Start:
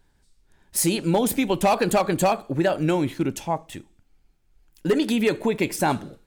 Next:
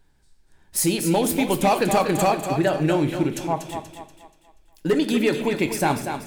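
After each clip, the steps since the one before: thinning echo 240 ms, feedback 41%, high-pass 250 Hz, level -7 dB; on a send at -10 dB: reverberation RT60 0.65 s, pre-delay 3 ms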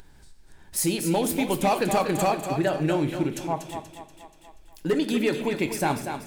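upward compressor, threshold -34 dBFS; trim -3.5 dB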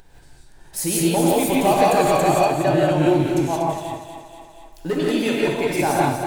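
peaking EQ 710 Hz +5 dB 0.76 oct; gated-style reverb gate 200 ms rising, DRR -4.5 dB; trim -1 dB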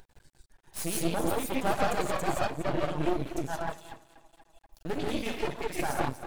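reverb removal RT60 1.8 s; half-wave rectifier; trim -5.5 dB

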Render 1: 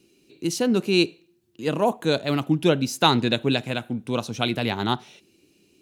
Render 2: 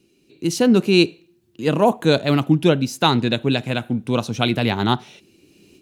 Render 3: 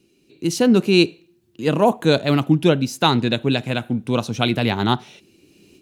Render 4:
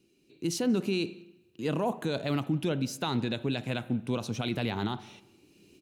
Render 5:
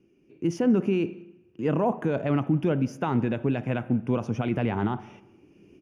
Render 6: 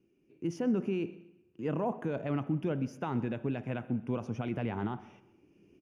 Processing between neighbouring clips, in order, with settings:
tone controls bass +3 dB, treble -2 dB; level rider gain up to 12 dB; trim -1 dB
no audible change
peak limiter -12.5 dBFS, peak gain reduction 10.5 dB; echo from a far wall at 31 m, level -26 dB; reverberation RT60 1.1 s, pre-delay 36 ms, DRR 18.5 dB; trim -7.5 dB
boxcar filter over 11 samples; trim +5.5 dB
feedback delay 127 ms, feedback 35%, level -21 dB; trim -8 dB

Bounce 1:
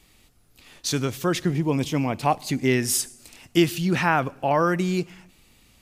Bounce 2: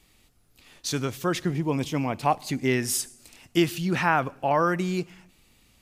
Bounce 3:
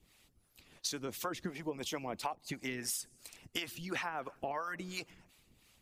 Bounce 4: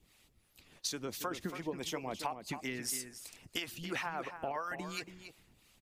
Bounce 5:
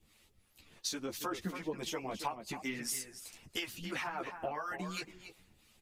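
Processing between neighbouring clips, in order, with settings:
dynamic bell 1.1 kHz, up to +3 dB, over -32 dBFS, Q 0.73; trim -3.5 dB
harmonic-percussive split harmonic -17 dB; harmonic tremolo 2.9 Hz, depth 70%, crossover 510 Hz; compression 16:1, threshold -36 dBFS, peak gain reduction 17.5 dB; trim +2 dB
echo from a far wall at 48 m, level -9 dB
three-phase chorus; trim +3 dB

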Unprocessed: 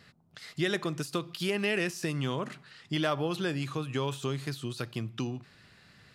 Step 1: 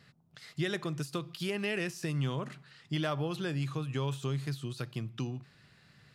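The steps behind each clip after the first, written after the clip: peaking EQ 140 Hz +7 dB 0.46 oct; trim -4.5 dB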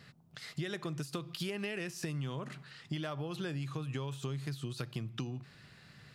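compression, threshold -39 dBFS, peak gain reduction 11 dB; trim +4 dB

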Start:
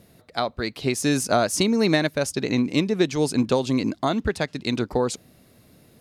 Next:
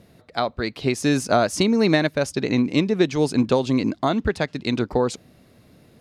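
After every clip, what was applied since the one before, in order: treble shelf 7.5 kHz -11.5 dB; trim +2 dB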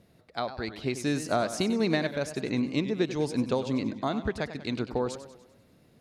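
modulated delay 98 ms, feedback 51%, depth 137 cents, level -12 dB; trim -8.5 dB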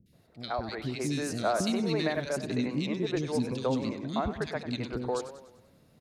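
three bands offset in time lows, highs, mids 60/130 ms, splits 330/2200 Hz

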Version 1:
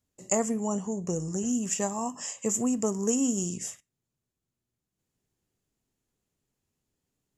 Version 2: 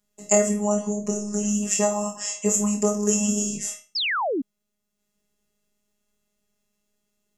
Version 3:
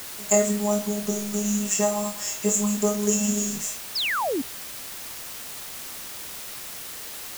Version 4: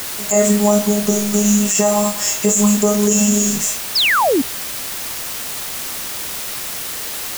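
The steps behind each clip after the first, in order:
robot voice 207 Hz; flutter echo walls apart 4.4 m, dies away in 0.31 s; painted sound fall, 3.95–4.42 s, 240–5500 Hz -32 dBFS; trim +7.5 dB
word length cut 6-bit, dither triangular; trim -1 dB
loudness maximiser +12 dB; trim -1 dB

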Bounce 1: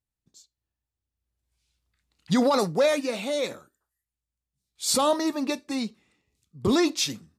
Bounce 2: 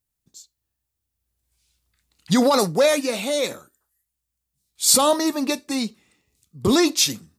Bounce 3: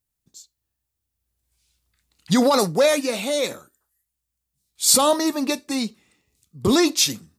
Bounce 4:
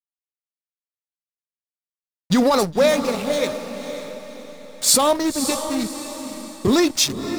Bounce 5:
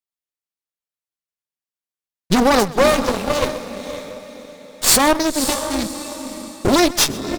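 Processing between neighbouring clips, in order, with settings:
treble shelf 7 kHz +11 dB; trim +4 dB
no audible change
hysteresis with a dead band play -22.5 dBFS; echo that smears into a reverb 550 ms, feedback 43%, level -9 dB; trim +1 dB
Chebyshev shaper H 8 -14 dB, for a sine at -1 dBFS; echo from a far wall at 22 m, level -19 dB; trim +1 dB

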